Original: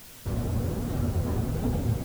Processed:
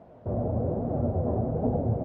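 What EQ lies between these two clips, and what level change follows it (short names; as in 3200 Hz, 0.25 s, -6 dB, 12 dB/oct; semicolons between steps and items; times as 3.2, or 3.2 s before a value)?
HPF 73 Hz; synth low-pass 650 Hz, resonance Q 3.6; 0.0 dB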